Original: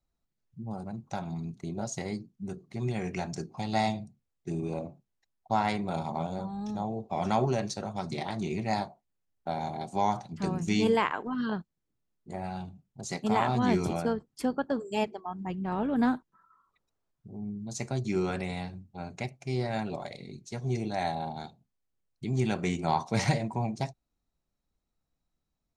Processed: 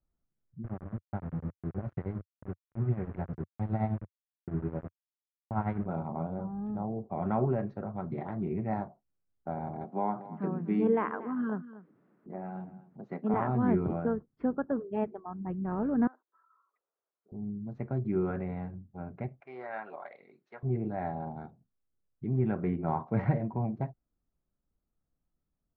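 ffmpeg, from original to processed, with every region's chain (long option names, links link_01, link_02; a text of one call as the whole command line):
ffmpeg -i in.wav -filter_complex "[0:a]asettb=1/sr,asplit=3[link_01][link_02][link_03];[link_01]atrim=end=0.644[link_04];[link_02]atrim=start=0.64:end=5.86,asetpts=PTS-STARTPTS,afade=type=in:duration=0.004:curve=qsin,afade=type=out:start_time=5.216:duration=0.004:curve=qsin,tremolo=f=9.7:d=0.7,aeval=exprs='val(0)*gte(abs(val(0)),0.0112)':channel_layout=same,equalizer=frequency=94:width=1.1:gain=10[link_05];[link_03]atrim=start=5.856[link_06];[link_04][link_05]acrossfade=duration=0.004:curve1=hsin:curve2=qsin[link_07];[link_07][link_06]acrossfade=duration=0.004:curve1=qsin:curve2=hsin,asettb=1/sr,asplit=3[link_08][link_09][link_10];[link_08]atrim=end=9.844[link_11];[link_09]atrim=start=9.84:end=13.34,asetpts=PTS-STARTPTS,afade=type=in:duration=0.004:curve=qsin,afade=type=out:start_time=3.496:duration=0.004:curve=qsin,highpass=frequency=170:width=0.5412,highpass=frequency=170:width=1.3066,acompressor=mode=upward:threshold=-41dB:ratio=2.5:attack=3.2:release=140:knee=2.83:detection=peak,aecho=1:1:237:0.158,atrim=end_sample=154350[link_12];[link_10]atrim=start=13.336[link_13];[link_11][link_12]acrossfade=duration=0.004:curve1=hsin:curve2=qsin[link_14];[link_14][link_13]acrossfade=duration=0.004:curve1=qsin:curve2=hsin,asettb=1/sr,asplit=3[link_15][link_16][link_17];[link_15]atrim=end=16.074[link_18];[link_16]atrim=start=16.07:end=17.32,asetpts=PTS-STARTPTS,afade=type=in:duration=0.004:curve=qsin,afade=type=out:start_time=1.246:duration=0.004:curve=qsin,highpass=frequency=440:width=0.5412,highpass=frequency=440:width=1.3066,acompressor=threshold=-60dB:ratio=2:attack=3.2:release=140:knee=1:detection=peak[link_19];[link_17]atrim=start=17.316[link_20];[link_18][link_19]acrossfade=duration=0.004:curve1=hsin:curve2=qsin[link_21];[link_21][link_20]acrossfade=duration=0.004:curve1=qsin:curve2=hsin,asettb=1/sr,asplit=3[link_22][link_23][link_24];[link_22]atrim=end=19.404[link_25];[link_23]atrim=start=19.4:end=20.63,asetpts=PTS-STARTPTS,afade=type=in:duration=0.004:curve=qsin,afade=type=out:start_time=1.226:duration=0.004:curve=qsin,highpass=990,acontrast=59[link_26];[link_24]atrim=start=20.626[link_27];[link_25][link_26]acrossfade=duration=0.004:curve1=hsin:curve2=qsin[link_28];[link_28][link_27]acrossfade=duration=0.004:curve1=qsin:curve2=hsin,lowpass=frequency=1500:width=0.5412,lowpass=frequency=1500:width=1.3066,equalizer=frequency=860:width=1.5:gain=-6" out.wav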